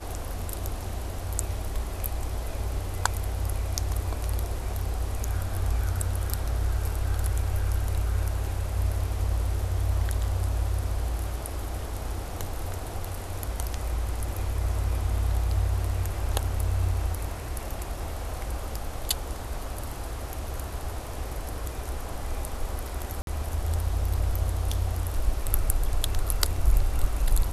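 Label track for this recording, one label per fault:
23.220000	23.270000	drop-out 52 ms

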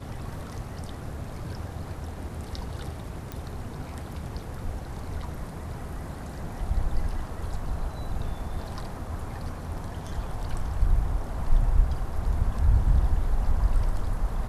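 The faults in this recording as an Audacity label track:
3.320000	3.320000	click

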